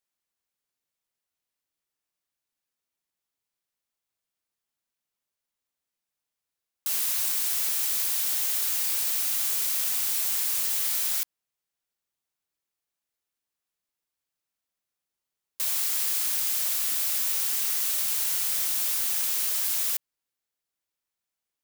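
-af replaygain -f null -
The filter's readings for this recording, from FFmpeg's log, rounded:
track_gain = +17.7 dB
track_peak = 0.147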